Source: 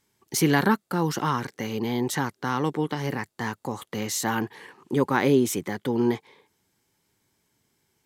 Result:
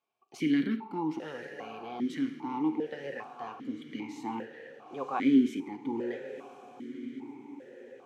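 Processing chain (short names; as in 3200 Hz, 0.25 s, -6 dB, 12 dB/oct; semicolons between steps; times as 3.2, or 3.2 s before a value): diffused feedback echo 1.039 s, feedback 56%, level -12 dB; non-linear reverb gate 0.26 s falling, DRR 8.5 dB; vowel sequencer 2.5 Hz; gain +2 dB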